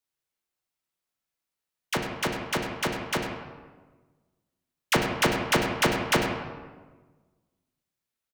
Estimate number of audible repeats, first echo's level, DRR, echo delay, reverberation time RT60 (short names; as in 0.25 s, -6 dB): 1, -11.0 dB, 0.5 dB, 98 ms, 1.4 s